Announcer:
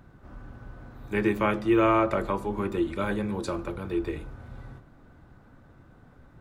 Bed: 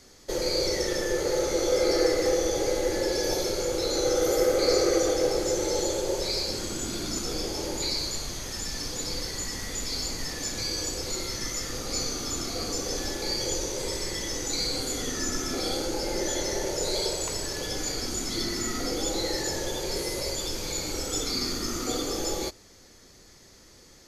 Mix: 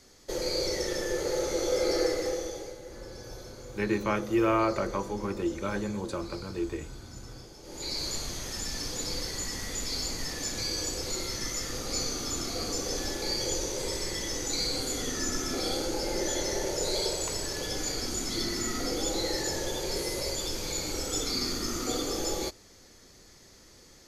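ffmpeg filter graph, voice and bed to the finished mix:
-filter_complex "[0:a]adelay=2650,volume=-3.5dB[a];[1:a]volume=13.5dB,afade=t=out:st=2:d=0.77:silence=0.177828,afade=t=in:st=7.63:d=0.48:silence=0.141254[b];[a][b]amix=inputs=2:normalize=0"

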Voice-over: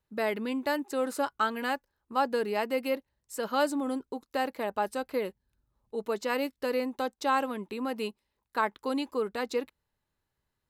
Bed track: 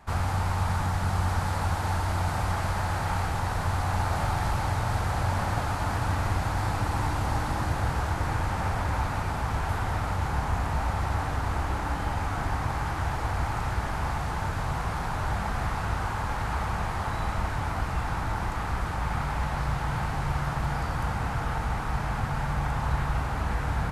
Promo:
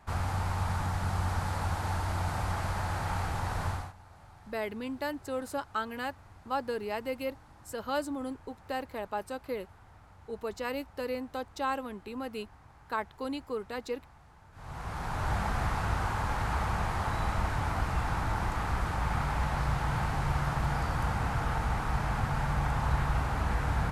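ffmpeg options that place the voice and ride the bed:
-filter_complex "[0:a]adelay=4350,volume=-5dB[a];[1:a]volume=21dB,afade=t=out:st=3.67:d=0.26:silence=0.0749894,afade=t=in:st=14.52:d=0.82:silence=0.0530884[b];[a][b]amix=inputs=2:normalize=0"

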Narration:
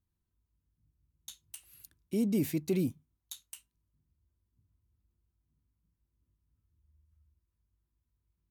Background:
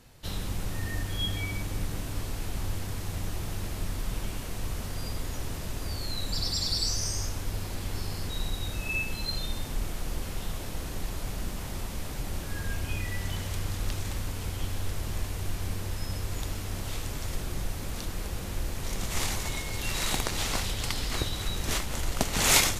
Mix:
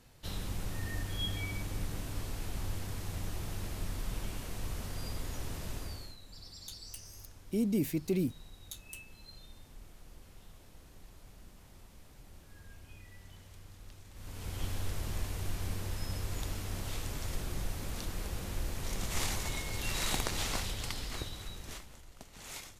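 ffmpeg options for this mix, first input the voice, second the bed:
-filter_complex "[0:a]adelay=5400,volume=-1dB[a];[1:a]volume=11.5dB,afade=t=out:st=5.74:d=0.43:silence=0.16788,afade=t=in:st=14.13:d=0.51:silence=0.149624,afade=t=out:st=20.3:d=1.73:silence=0.0944061[b];[a][b]amix=inputs=2:normalize=0"

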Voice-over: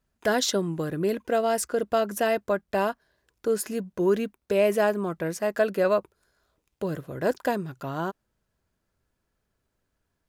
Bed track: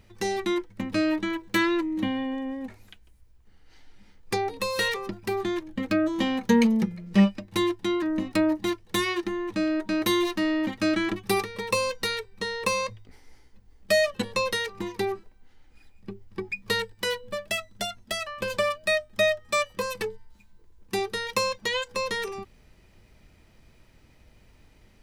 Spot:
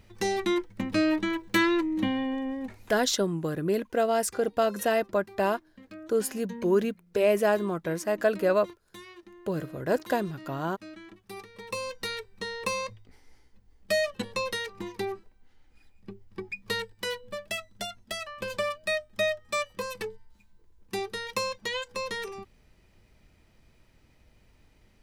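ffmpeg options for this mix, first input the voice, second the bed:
-filter_complex "[0:a]adelay=2650,volume=-1dB[a];[1:a]volume=16.5dB,afade=t=out:st=2.93:d=0.42:silence=0.0891251,afade=t=in:st=11.27:d=0.93:silence=0.149624[b];[a][b]amix=inputs=2:normalize=0"

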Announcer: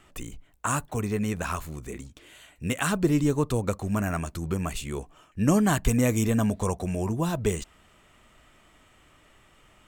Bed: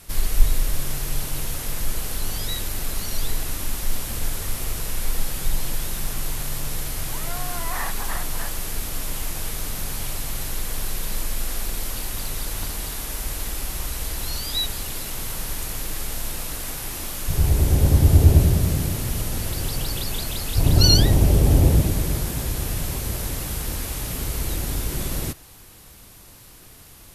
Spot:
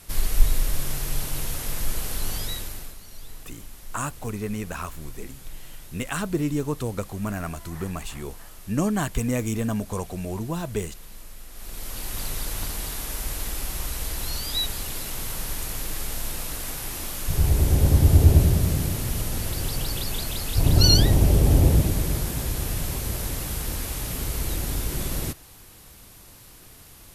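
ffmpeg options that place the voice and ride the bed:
-filter_complex "[0:a]adelay=3300,volume=-2.5dB[a];[1:a]volume=13.5dB,afade=t=out:st=2.35:d=0.62:silence=0.177828,afade=t=in:st=11.52:d=0.7:silence=0.177828[b];[a][b]amix=inputs=2:normalize=0"

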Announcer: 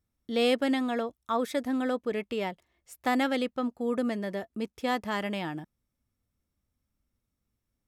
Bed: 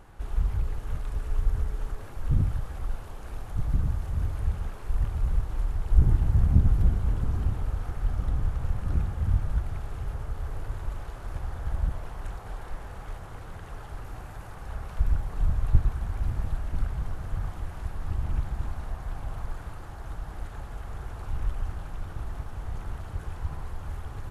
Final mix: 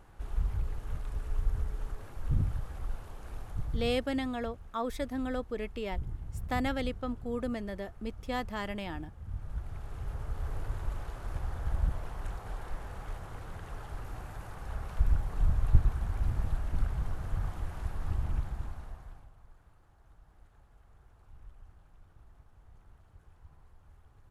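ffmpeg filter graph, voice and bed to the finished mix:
-filter_complex "[0:a]adelay=3450,volume=-5.5dB[a];[1:a]volume=10.5dB,afade=t=out:st=3.43:d=0.74:silence=0.237137,afade=t=in:st=9.24:d=1.25:silence=0.16788,afade=t=out:st=18.08:d=1.23:silence=0.0944061[b];[a][b]amix=inputs=2:normalize=0"

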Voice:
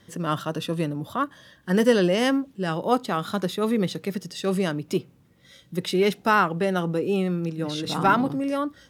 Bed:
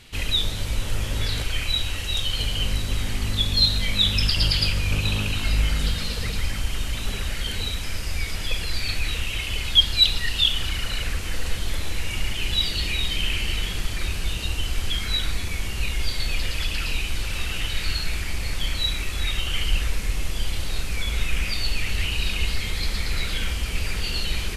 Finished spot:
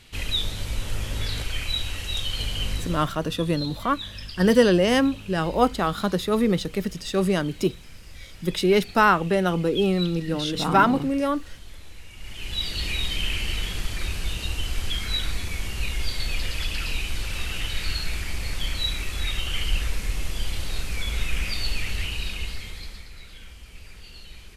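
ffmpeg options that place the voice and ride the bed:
-filter_complex "[0:a]adelay=2700,volume=2dB[a];[1:a]volume=11.5dB,afade=t=out:st=2.72:d=0.44:silence=0.211349,afade=t=in:st=12.17:d=0.72:silence=0.188365,afade=t=out:st=21.74:d=1.36:silence=0.158489[b];[a][b]amix=inputs=2:normalize=0"

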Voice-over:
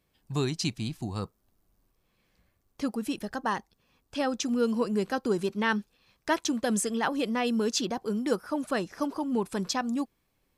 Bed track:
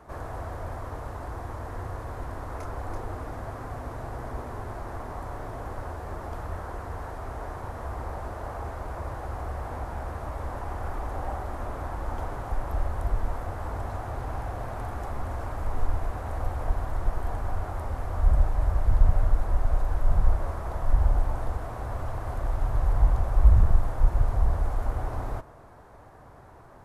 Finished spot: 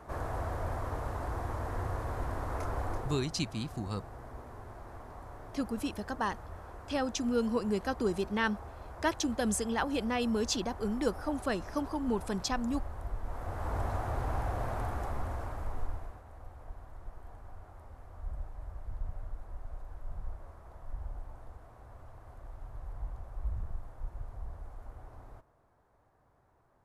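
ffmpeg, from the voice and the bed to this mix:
-filter_complex "[0:a]adelay=2750,volume=-3.5dB[a];[1:a]volume=10.5dB,afade=t=out:st=2.82:d=0.48:silence=0.281838,afade=t=in:st=13.23:d=0.57:silence=0.298538,afade=t=out:st=14.72:d=1.52:silence=0.11885[b];[a][b]amix=inputs=2:normalize=0"

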